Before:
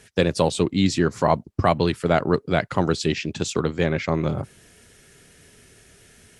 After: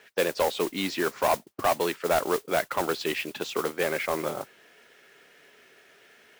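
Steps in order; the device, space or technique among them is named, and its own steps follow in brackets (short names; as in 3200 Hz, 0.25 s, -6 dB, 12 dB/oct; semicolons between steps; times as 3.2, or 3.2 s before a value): carbon microphone (BPF 490–3100 Hz; soft clip -18 dBFS, distortion -11 dB; modulation noise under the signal 13 dB); gain +1.5 dB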